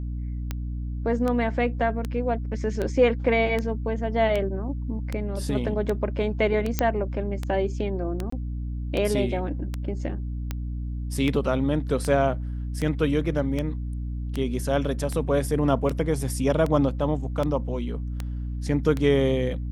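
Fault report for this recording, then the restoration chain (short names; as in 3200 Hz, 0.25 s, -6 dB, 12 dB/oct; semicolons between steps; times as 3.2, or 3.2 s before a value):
hum 60 Hz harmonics 5 -30 dBFS
tick 78 rpm -15 dBFS
6.79 pop -7 dBFS
8.3–8.32 gap 24 ms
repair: de-click; de-hum 60 Hz, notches 5; interpolate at 8.3, 24 ms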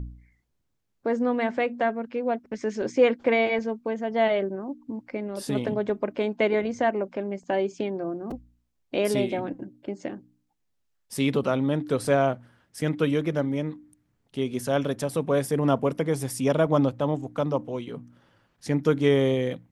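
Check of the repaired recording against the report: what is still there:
none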